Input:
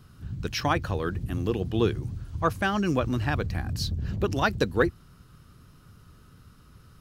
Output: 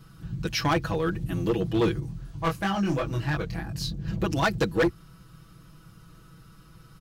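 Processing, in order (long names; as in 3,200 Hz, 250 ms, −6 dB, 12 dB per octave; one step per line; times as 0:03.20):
comb filter 6.1 ms, depth 90%
hard clipping −18 dBFS, distortion −11 dB
0:02.00–0:04.08: chorus effect 2.9 Hz, delay 20 ms, depth 4.6 ms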